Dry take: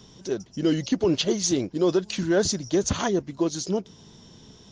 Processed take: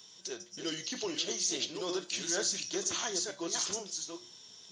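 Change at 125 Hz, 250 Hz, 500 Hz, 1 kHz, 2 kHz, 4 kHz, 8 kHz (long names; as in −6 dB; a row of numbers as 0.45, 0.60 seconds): −22.0, −17.0, −14.0, −9.5, −5.5, −2.5, −1.0 decibels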